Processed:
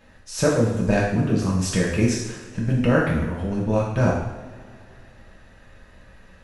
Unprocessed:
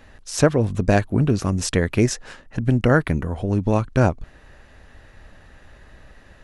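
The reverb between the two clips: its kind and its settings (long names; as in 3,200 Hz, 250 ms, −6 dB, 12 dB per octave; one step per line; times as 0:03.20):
coupled-rooms reverb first 0.81 s, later 3 s, from −19 dB, DRR −5 dB
level −7.5 dB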